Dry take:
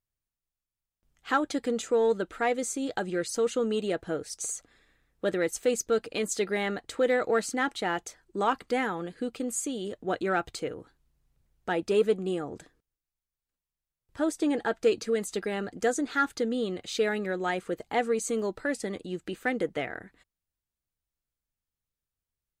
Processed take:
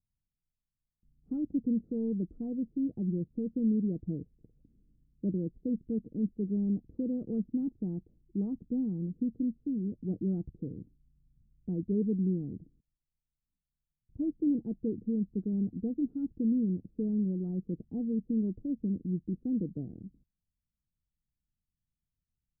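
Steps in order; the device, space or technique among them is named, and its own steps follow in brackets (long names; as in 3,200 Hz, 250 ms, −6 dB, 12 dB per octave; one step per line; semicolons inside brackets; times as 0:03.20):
the neighbour's flat through the wall (low-pass filter 260 Hz 24 dB per octave; parametric band 180 Hz +4 dB 0.77 octaves)
level +4 dB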